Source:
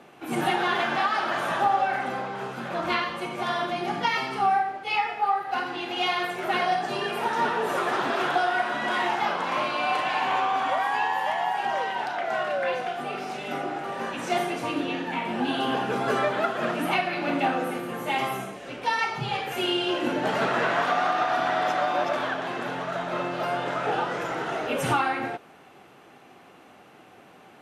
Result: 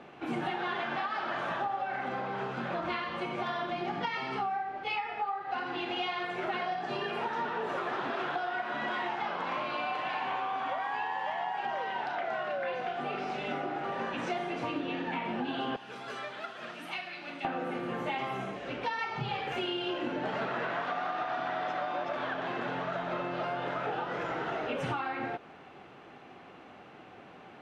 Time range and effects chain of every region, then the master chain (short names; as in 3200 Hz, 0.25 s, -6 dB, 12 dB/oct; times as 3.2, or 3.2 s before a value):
15.76–17.45 pre-emphasis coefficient 0.9 + notch 7000 Hz, Q 25
whole clip: LPF 4000 Hz 12 dB/oct; low shelf 69 Hz +5.5 dB; compressor, threshold -31 dBFS